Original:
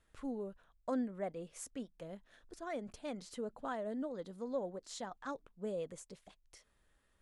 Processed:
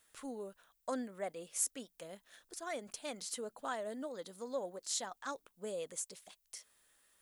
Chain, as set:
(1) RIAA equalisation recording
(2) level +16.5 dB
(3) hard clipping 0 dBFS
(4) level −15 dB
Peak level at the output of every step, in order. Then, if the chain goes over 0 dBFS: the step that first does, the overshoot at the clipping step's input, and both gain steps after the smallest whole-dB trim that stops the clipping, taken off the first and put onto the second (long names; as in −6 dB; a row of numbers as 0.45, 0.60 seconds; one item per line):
−21.0, −4.5, −4.5, −19.5 dBFS
no step passes full scale